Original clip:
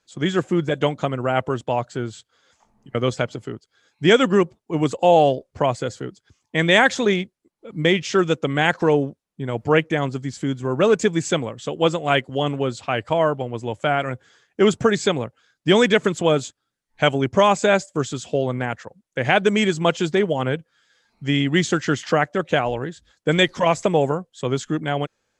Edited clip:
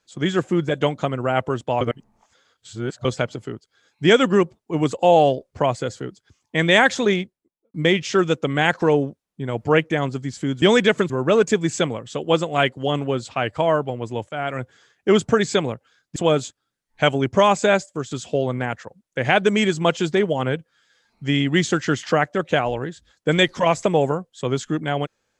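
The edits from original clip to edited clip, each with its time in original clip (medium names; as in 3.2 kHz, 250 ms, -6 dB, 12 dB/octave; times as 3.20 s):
1.81–3.05 s: reverse
7.13–7.74 s: studio fade out
13.81–14.13 s: fade in, from -13.5 dB
15.68–16.16 s: move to 10.62 s
17.71–18.11 s: fade out, to -7.5 dB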